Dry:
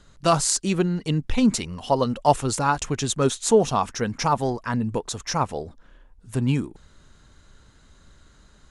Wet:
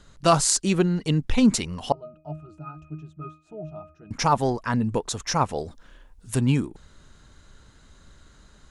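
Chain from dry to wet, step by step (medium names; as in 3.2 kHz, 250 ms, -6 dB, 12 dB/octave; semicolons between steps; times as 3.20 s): 1.92–4.11 s: pitch-class resonator D#, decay 0.34 s; 5.58–6.41 s: treble shelf 2.6 kHz +8.5 dB; trim +1 dB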